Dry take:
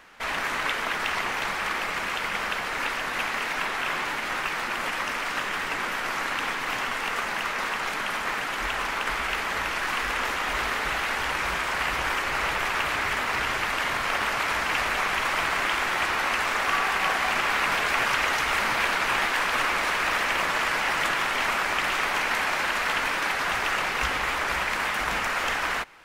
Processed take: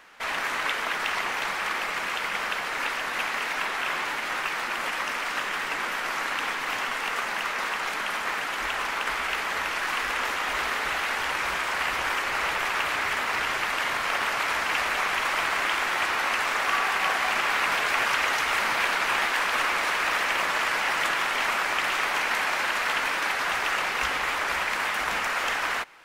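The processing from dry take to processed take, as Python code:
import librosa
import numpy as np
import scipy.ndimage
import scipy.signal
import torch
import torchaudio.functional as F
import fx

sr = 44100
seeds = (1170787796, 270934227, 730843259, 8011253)

y = fx.low_shelf(x, sr, hz=210.0, db=-9.5)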